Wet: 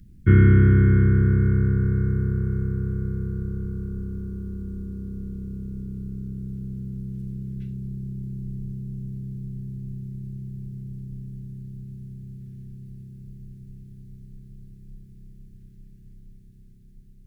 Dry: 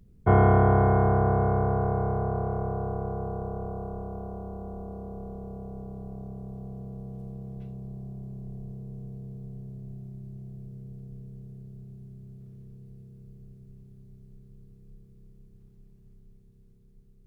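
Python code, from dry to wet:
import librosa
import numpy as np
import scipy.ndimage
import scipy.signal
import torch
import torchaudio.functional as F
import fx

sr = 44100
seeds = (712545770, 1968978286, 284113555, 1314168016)

y = scipy.signal.sosfilt(scipy.signal.ellip(3, 1.0, 70, [330.0, 1600.0], 'bandstop', fs=sr, output='sos'), x)
y = y * 10.0 ** (7.5 / 20.0)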